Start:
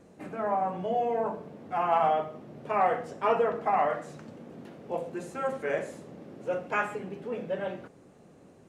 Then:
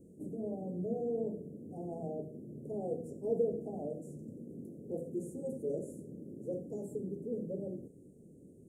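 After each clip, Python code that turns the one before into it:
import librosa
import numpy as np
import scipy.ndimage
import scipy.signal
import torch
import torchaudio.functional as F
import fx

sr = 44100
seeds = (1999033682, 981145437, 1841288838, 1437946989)

y = scipy.signal.sosfilt(scipy.signal.cheby2(4, 60, [1100.0, 3600.0], 'bandstop', fs=sr, output='sos'), x)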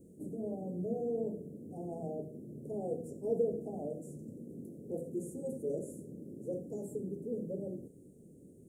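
y = fx.high_shelf(x, sr, hz=6200.0, db=6.0)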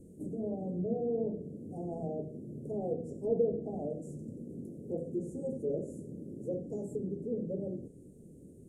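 y = fx.low_shelf(x, sr, hz=67.0, db=11.5)
y = fx.env_lowpass_down(y, sr, base_hz=2800.0, full_db=-31.0)
y = F.gain(torch.from_numpy(y), 2.0).numpy()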